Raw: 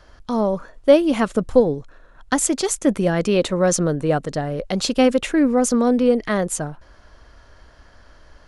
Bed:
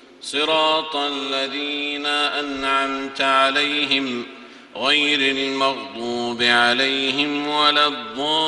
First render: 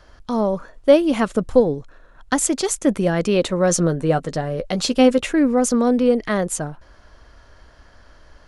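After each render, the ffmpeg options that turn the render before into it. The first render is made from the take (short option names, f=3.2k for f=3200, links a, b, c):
-filter_complex "[0:a]asettb=1/sr,asplit=3[a][b][c];[a]atrim=end=3.694[d];[b]atrim=start=3.69:end=5.33,asetpts=PTS-STARTPTS,afade=t=in:d=0.004:c=qsin,afade=t=out:st=1.636:d=0.004:c=qsin,asplit=2[e][f];[f]adelay=12,volume=-9dB[g];[e][g]amix=inputs=2:normalize=0,atrim=end_sample=72324[h];[c]atrim=start=5.326[i];[d][h]acrossfade=d=0.004:c1=hsin:c2=qsin[j];[j][i]acrossfade=d=0.004:c1=qsin:c2=hsin"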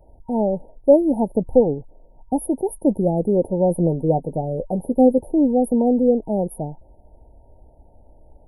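-af "afftfilt=real='re*(1-between(b*sr/4096,940,9500))':imag='im*(1-between(b*sr/4096,940,9500))':win_size=4096:overlap=0.75,equalizer=f=6.6k:t=o:w=2.1:g=-8.5"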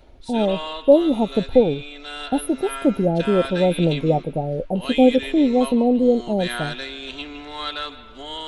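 -filter_complex "[1:a]volume=-13dB[a];[0:a][a]amix=inputs=2:normalize=0"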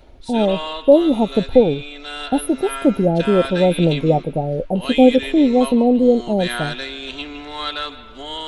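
-af "volume=3dB,alimiter=limit=-1dB:level=0:latency=1"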